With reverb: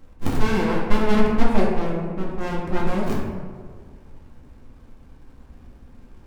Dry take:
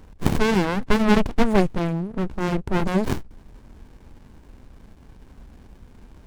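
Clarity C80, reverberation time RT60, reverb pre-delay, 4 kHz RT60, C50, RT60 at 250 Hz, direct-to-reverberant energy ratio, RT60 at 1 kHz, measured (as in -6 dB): 3.5 dB, 1.7 s, 4 ms, 0.80 s, 1.5 dB, 1.7 s, -4.0 dB, 1.6 s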